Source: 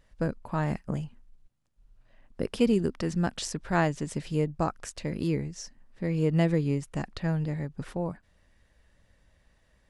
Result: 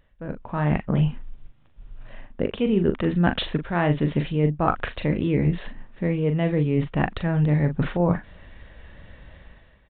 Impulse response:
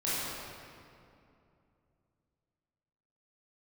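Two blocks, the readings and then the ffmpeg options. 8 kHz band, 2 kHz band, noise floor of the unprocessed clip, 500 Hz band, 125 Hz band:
under -35 dB, +6.0 dB, -67 dBFS, +5.0 dB, +7.0 dB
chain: -filter_complex "[0:a]areverse,acompressor=threshold=-36dB:ratio=16,areverse,asplit=2[a][b];[b]adelay=40,volume=-8dB[c];[a][c]amix=inputs=2:normalize=0,dynaudnorm=f=140:g=7:m=14dB,aresample=8000,aresample=44100,volume=4dB"

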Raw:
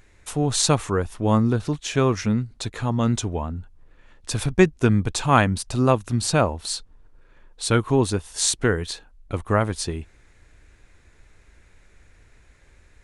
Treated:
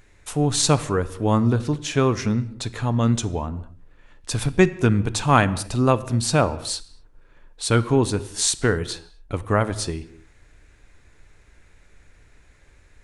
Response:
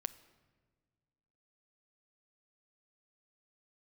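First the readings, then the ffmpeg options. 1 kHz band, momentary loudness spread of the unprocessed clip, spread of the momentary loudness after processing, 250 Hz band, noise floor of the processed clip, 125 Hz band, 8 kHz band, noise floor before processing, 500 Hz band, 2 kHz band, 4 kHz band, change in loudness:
+0.5 dB, 12 LU, 12 LU, +0.5 dB, -55 dBFS, +1.0 dB, +0.5 dB, -55 dBFS, +0.5 dB, +0.5 dB, +0.5 dB, +0.5 dB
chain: -filter_complex "[1:a]atrim=start_sample=2205,afade=t=out:st=0.31:d=0.01,atrim=end_sample=14112[a];[0:a][a]afir=irnorm=-1:irlink=0,volume=2dB"

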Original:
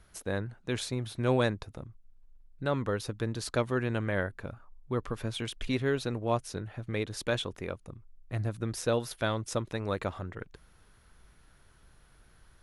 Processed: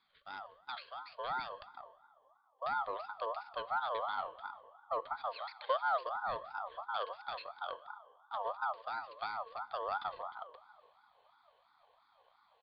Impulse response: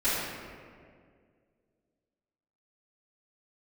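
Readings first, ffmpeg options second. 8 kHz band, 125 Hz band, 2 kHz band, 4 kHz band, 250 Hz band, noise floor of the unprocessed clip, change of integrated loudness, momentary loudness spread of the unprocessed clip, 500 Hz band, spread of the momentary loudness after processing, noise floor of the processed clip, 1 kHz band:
under -35 dB, under -30 dB, -6.0 dB, -9.0 dB, under -30 dB, -61 dBFS, -7.0 dB, 14 LU, -10.5 dB, 14 LU, -71 dBFS, +3.5 dB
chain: -filter_complex "[0:a]aexciter=amount=8.4:drive=6.4:freq=2.4k,acompressor=threshold=-22dB:ratio=6,asplit=3[a][b][c];[a]bandpass=f=300:t=q:w=8,volume=0dB[d];[b]bandpass=f=870:t=q:w=8,volume=-6dB[e];[c]bandpass=f=2.24k:t=q:w=8,volume=-9dB[f];[d][e][f]amix=inputs=3:normalize=0,bandreject=f=153.2:t=h:w=4,bandreject=f=306.4:t=h:w=4,bandreject=f=459.6:t=h:w=4,bandreject=f=612.8:t=h:w=4,bandreject=f=766:t=h:w=4,bandreject=f=919.2:t=h:w=4,bandreject=f=1.0724k:t=h:w=4,bandreject=f=1.2256k:t=h:w=4,bandreject=f=1.3788k:t=h:w=4,bandreject=f=1.532k:t=h:w=4,bandreject=f=1.6852k:t=h:w=4,bandreject=f=1.8384k:t=h:w=4,bandreject=f=1.9916k:t=h:w=4,bandreject=f=2.1448k:t=h:w=4,bandreject=f=2.298k:t=h:w=4,bandreject=f=2.4512k:t=h:w=4,asubboost=boost=9:cutoff=250,asplit=2[g][h];[1:a]atrim=start_sample=2205[i];[h][i]afir=irnorm=-1:irlink=0,volume=-27dB[j];[g][j]amix=inputs=2:normalize=0,aresample=8000,aresample=44100,aeval=exprs='val(0)*sin(2*PI*970*n/s+970*0.2/2.9*sin(2*PI*2.9*n/s))':c=same,volume=1.5dB"

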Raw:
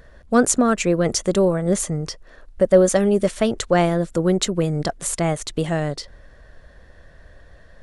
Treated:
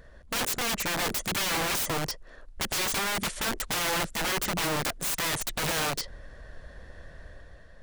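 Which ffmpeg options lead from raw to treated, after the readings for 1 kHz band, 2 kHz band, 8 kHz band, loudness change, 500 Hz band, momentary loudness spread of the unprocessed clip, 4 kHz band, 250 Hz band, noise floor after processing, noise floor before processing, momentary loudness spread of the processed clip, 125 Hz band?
-5.0 dB, +0.5 dB, -5.0 dB, -8.5 dB, -17.0 dB, 9 LU, +2.0 dB, -17.0 dB, -50 dBFS, -48 dBFS, 5 LU, -14.0 dB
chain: -filter_complex "[0:a]asplit=2[a][b];[b]asoftclip=type=tanh:threshold=-14.5dB,volume=-10.5dB[c];[a][c]amix=inputs=2:normalize=0,dynaudnorm=f=110:g=11:m=5.5dB,aeval=exprs='(mod(7.08*val(0)+1,2)-1)/7.08':c=same,volume=-6.5dB"

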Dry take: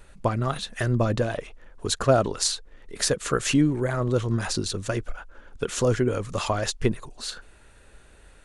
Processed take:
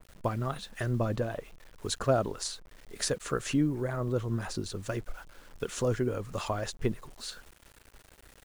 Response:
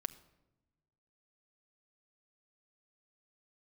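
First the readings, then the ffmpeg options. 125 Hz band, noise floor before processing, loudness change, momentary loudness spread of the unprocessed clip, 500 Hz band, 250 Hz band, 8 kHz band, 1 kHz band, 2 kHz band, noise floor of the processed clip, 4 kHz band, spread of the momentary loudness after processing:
-6.5 dB, -53 dBFS, -7.0 dB, 13 LU, -6.5 dB, -6.5 dB, -9.0 dB, -7.0 dB, -8.0 dB, -59 dBFS, -9.0 dB, 13 LU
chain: -af "acrusher=bits=7:mix=0:aa=0.000001,adynamicequalizer=threshold=0.00891:dfrequency=1800:dqfactor=0.7:tfrequency=1800:tqfactor=0.7:attack=5:release=100:ratio=0.375:range=3.5:mode=cutabove:tftype=highshelf,volume=-6.5dB"

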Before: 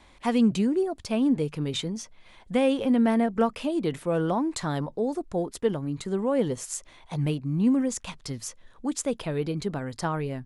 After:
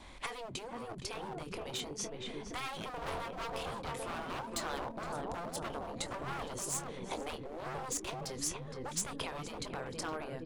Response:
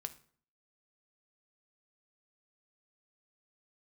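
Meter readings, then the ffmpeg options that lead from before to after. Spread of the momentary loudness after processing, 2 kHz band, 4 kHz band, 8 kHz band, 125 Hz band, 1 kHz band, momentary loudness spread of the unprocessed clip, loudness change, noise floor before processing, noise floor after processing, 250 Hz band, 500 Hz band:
6 LU, -4.5 dB, -4.5 dB, -2.0 dB, -15.0 dB, -6.0 dB, 12 LU, -13.0 dB, -55 dBFS, -46 dBFS, -21.0 dB, -14.0 dB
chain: -filter_complex "[0:a]asplit=2[a][b];[b]adelay=23,volume=-11.5dB[c];[a][c]amix=inputs=2:normalize=0,dynaudnorm=f=520:g=7:m=7dB,asplit=2[d][e];[e]adelay=466,lowpass=f=1.4k:p=1,volume=-6dB,asplit=2[f][g];[g]adelay=466,lowpass=f=1.4k:p=1,volume=0.48,asplit=2[h][i];[i]adelay=466,lowpass=f=1.4k:p=1,volume=0.48,asplit=2[j][k];[k]adelay=466,lowpass=f=1.4k:p=1,volume=0.48,asplit=2[l][m];[m]adelay=466,lowpass=f=1.4k:p=1,volume=0.48,asplit=2[n][o];[o]adelay=466,lowpass=f=1.4k:p=1,volume=0.48[p];[d][f][h][j][l][n][p]amix=inputs=7:normalize=0,asoftclip=type=hard:threshold=-20.5dB,acompressor=threshold=-33dB:ratio=10,afftfilt=real='re*lt(hypot(re,im),0.0708)':imag='im*lt(hypot(re,im),0.0708)':win_size=1024:overlap=0.75,adynamicequalizer=threshold=0.00178:dfrequency=1900:dqfactor=2:tfrequency=1900:tqfactor=2:attack=5:release=100:ratio=0.375:range=2.5:mode=cutabove:tftype=bell,volume=2.5dB"

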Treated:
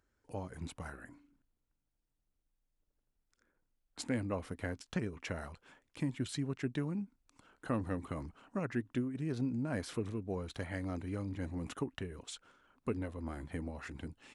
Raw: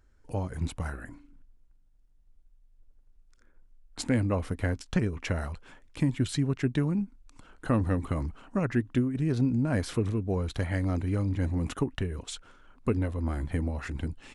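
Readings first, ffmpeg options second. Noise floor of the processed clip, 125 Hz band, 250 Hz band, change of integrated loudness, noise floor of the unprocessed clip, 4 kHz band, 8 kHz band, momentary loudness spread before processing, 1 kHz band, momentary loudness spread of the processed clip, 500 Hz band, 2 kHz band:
-83 dBFS, -12.0 dB, -9.0 dB, -9.5 dB, -61 dBFS, -7.0 dB, -7.0 dB, 11 LU, -7.0 dB, 11 LU, -7.5 dB, -7.0 dB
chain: -af "highpass=f=170:p=1,volume=-7dB"

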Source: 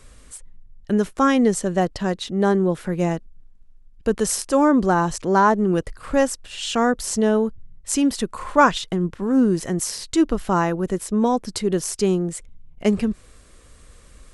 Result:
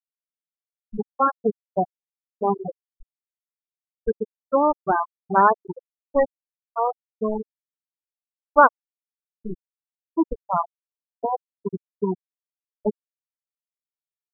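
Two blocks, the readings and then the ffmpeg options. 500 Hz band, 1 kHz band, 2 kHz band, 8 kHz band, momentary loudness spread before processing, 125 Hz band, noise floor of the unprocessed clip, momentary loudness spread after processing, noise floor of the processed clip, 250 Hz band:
-4.0 dB, +0.5 dB, -3.0 dB, under -40 dB, 9 LU, -12.5 dB, -49 dBFS, 18 LU, under -85 dBFS, -11.5 dB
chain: -af "equalizer=f=100:t=o:w=0.67:g=-4,equalizer=f=250:t=o:w=0.67:g=-10,equalizer=f=4k:t=o:w=0.67:g=-10,aeval=exprs='val(0)*gte(abs(val(0)),0.126)':c=same,afftfilt=real='re*gte(hypot(re,im),0.355)':imag='im*gte(hypot(re,im),0.355)':win_size=1024:overlap=0.75,volume=2.5dB"

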